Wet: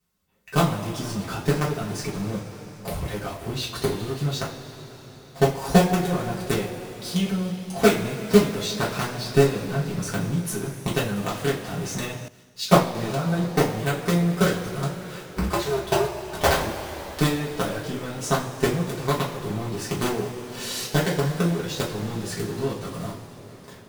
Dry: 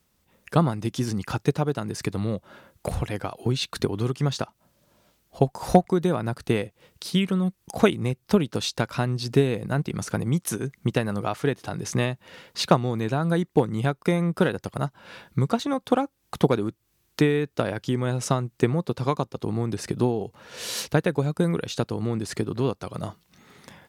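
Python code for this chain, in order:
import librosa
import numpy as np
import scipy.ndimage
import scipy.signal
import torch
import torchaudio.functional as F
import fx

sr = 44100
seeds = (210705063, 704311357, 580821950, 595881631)

p1 = fx.cycle_switch(x, sr, every=2, mode='inverted', at=(15.23, 16.63), fade=0.02)
p2 = fx.quant_companded(p1, sr, bits=2)
p3 = p1 + F.gain(torch.from_numpy(p2), -3.5).numpy()
p4 = fx.rev_double_slope(p3, sr, seeds[0], early_s=0.3, late_s=4.6, knee_db=-19, drr_db=-7.5)
p5 = fx.band_widen(p4, sr, depth_pct=70, at=(12.28, 12.95))
y = F.gain(torch.from_numpy(p5), -14.0).numpy()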